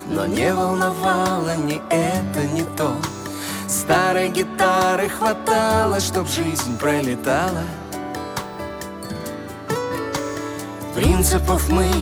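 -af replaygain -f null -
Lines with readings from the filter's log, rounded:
track_gain = +1.8 dB
track_peak = 0.347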